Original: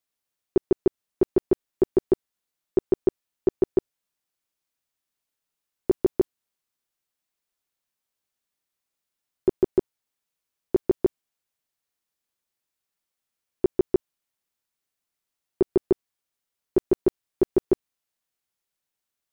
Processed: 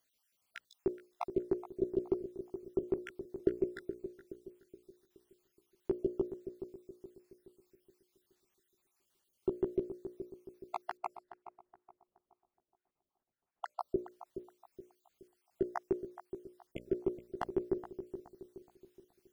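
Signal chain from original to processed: random holes in the spectrogram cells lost 53%; 10.97–13.80 s: level-controlled noise filter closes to 920 Hz, open at -49 dBFS; compressor with a negative ratio -26 dBFS, ratio -1; hum notches 60/120/180/240/300/360/420/480/540/600 Hz; on a send: filtered feedback delay 422 ms, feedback 46%, low-pass 950 Hz, level -10 dB; on the sum: trim -1 dB

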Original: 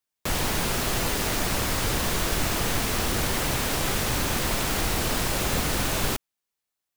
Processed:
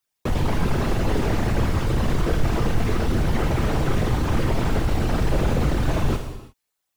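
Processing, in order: resonances exaggerated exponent 2; gated-style reverb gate 380 ms falling, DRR 5.5 dB; slew-rate limiter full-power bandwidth 39 Hz; trim +5 dB

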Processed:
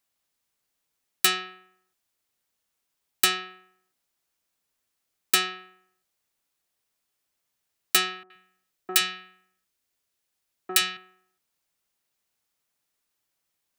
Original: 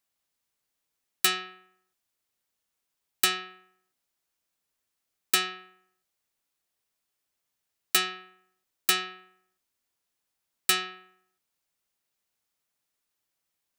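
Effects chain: 8.23–10.97 s: three bands offset in time mids, highs, lows 70/120 ms, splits 190/1000 Hz; trim +2.5 dB

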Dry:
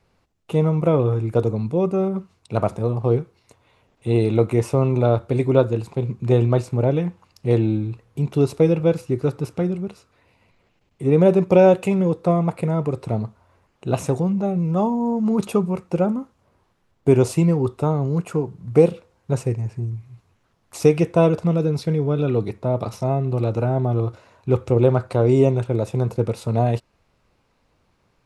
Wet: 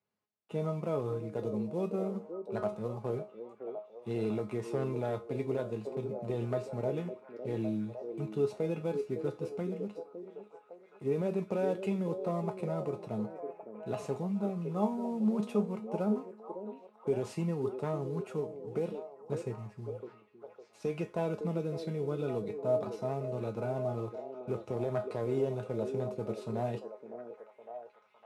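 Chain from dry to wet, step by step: CVSD coder 64 kbps; low-pass 3.5 kHz 6 dB/octave; gate -38 dBFS, range -10 dB; high-pass 89 Hz 24 dB/octave; bass shelf 120 Hz -8 dB; peak limiter -11.5 dBFS, peak gain reduction 8 dB; feedback comb 210 Hz, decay 0.23 s, harmonics all, mix 80%; repeats whose band climbs or falls 558 ms, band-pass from 390 Hz, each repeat 0.7 oct, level -5 dB; trim -2 dB

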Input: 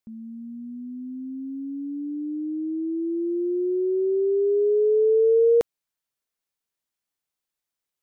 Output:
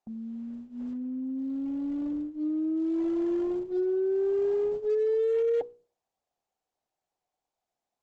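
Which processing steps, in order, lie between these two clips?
compression 20:1, threshold -27 dBFS, peak gain reduction 12 dB; resonant low-pass 750 Hz, resonance Q 8.4; hum notches 60/120/180/240/300/360/420/480 Hz; Chebyshev shaper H 4 -32 dB, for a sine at -22.5 dBFS; Opus 10 kbps 48 kHz

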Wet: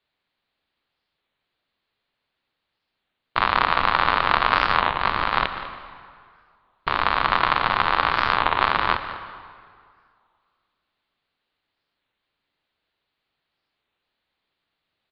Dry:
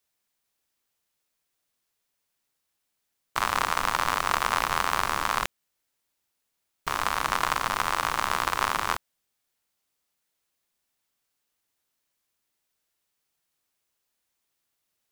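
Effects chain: plate-style reverb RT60 2.1 s, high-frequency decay 0.75×, pre-delay 105 ms, DRR 11.5 dB; 4.92–5.32 s: compressor with a negative ratio -29 dBFS, ratio -0.5; steep low-pass 4.4 kHz 72 dB/octave; on a send: delay 197 ms -15 dB; on the sum: warped record 33 1/3 rpm, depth 160 cents; trim +6 dB

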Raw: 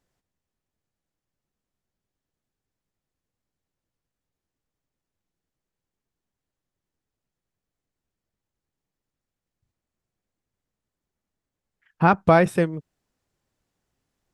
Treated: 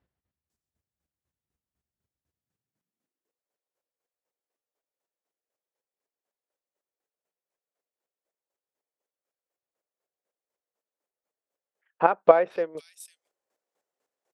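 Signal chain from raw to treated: high-pass sweep 66 Hz -> 510 Hz, 2.26–3.42 s; square tremolo 4 Hz, depth 65%, duty 25%; bands offset in time lows, highs 500 ms, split 3.9 kHz; trim -1 dB

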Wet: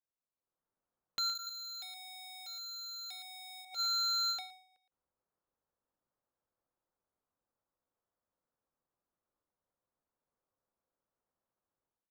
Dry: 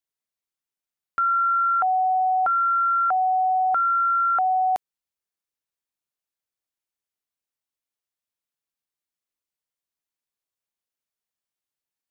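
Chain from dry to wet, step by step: peak limiter -23 dBFS, peak gain reduction 5.5 dB; low-pass 1.3 kHz 24 dB/octave; peaking EQ 520 Hz +5 dB 0.21 oct; wavefolder -34 dBFS; 1.35–3.65 s: tilt EQ +4 dB/octave; gate -32 dBFS, range -8 dB; level rider gain up to 13 dB; inverted gate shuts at -21 dBFS, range -26 dB; echo from a far wall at 20 m, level -9 dB; endings held to a fixed fall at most 100 dB/s; trim +2.5 dB

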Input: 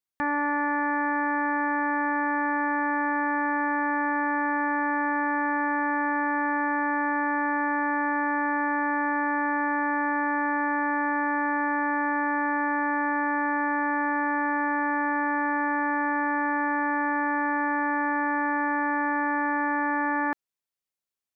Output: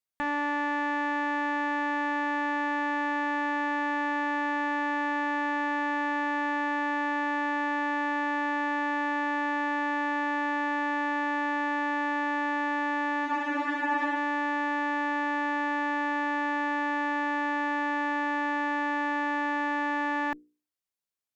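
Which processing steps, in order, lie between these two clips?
hum notches 60/120/180/240/300/360/420/480 Hz; Chebyshev shaper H 2 -14 dB, 5 -28 dB, 6 -40 dB, 7 -41 dB, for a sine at -17 dBFS; spectral freeze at 13.28 s, 0.88 s; trim -3 dB

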